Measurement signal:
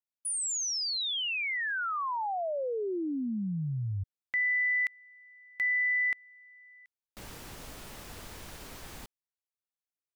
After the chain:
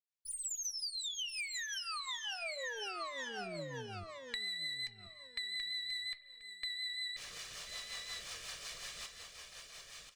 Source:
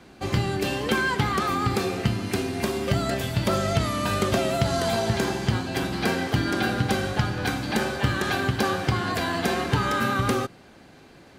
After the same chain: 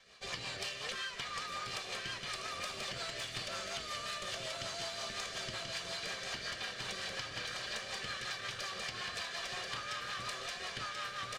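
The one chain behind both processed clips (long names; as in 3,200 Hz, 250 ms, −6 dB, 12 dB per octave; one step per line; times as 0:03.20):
lower of the sound and its delayed copy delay 1.7 ms
high-frequency loss of the air 120 metres
on a send: repeating echo 1,034 ms, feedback 20%, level −5 dB
on the sum: automatic gain control gain up to 8 dB
rotating-speaker cabinet horn 5.5 Hz
first-order pre-emphasis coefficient 0.97
spring reverb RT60 1.1 s, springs 37/42 ms, chirp 25 ms, DRR 19.5 dB
flanger 0.76 Hz, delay 3.8 ms, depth 3.5 ms, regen −68%
in parallel at −7.5 dB: soft clipping −38 dBFS
on the sum: downward compressor 16 to 1, threshold −48 dBFS
level +10.5 dB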